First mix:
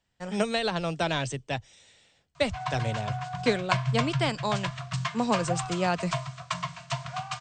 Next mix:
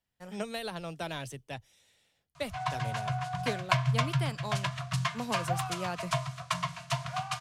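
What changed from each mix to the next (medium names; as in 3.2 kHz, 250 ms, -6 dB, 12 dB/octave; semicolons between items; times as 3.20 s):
speech -9.5 dB; master: remove brick-wall FIR low-pass 8.7 kHz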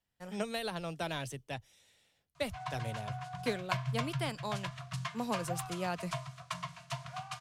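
background -8.0 dB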